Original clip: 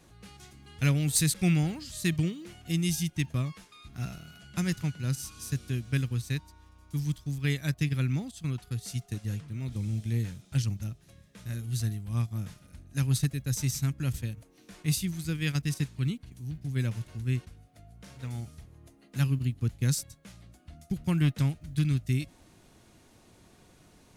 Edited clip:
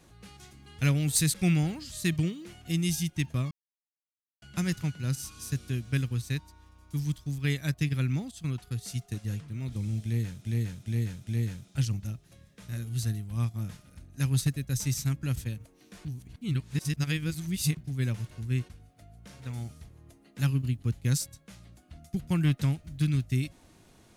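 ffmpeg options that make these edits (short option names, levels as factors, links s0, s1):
-filter_complex "[0:a]asplit=8[s0][s1][s2][s3][s4][s5][s6][s7];[s0]atrim=end=3.51,asetpts=PTS-STARTPTS,afade=t=out:st=3.506:d=0.004:c=hsin[s8];[s1]atrim=start=3.51:end=4.42,asetpts=PTS-STARTPTS,volume=0[s9];[s2]atrim=start=4.42:end=10.452,asetpts=PTS-STARTPTS,afade=t=in:d=0.004:c=hsin[s10];[s3]atrim=start=10.038:end=10.452[s11];[s4]atrim=start=10.038:end=10.452[s12];[s5]atrim=start=10.038:end=14.822[s13];[s6]atrim=start=14.818:end=16.542,asetpts=PTS-STARTPTS,areverse[s14];[s7]atrim=start=16.538[s15];[s8][s9][s10]concat=n=3:v=0:a=1[s16];[s16][s11]acrossfade=d=0.004:c1=hsin:c2=hsin[s17];[s17][s12]acrossfade=d=0.004:c1=hsin:c2=hsin[s18];[s18][s13]acrossfade=d=0.004:c1=hsin:c2=hsin[s19];[s19][s14]acrossfade=d=0.004:c1=hsin:c2=hsin[s20];[s20][s15]acrossfade=d=0.004:c1=hsin:c2=hsin"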